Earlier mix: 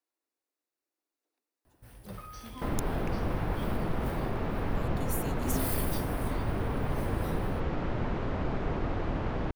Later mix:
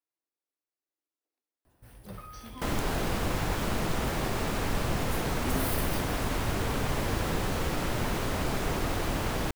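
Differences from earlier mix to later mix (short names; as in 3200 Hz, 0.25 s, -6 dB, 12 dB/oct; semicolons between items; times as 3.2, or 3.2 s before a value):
speech -6.5 dB; second sound: remove tape spacing loss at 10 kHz 37 dB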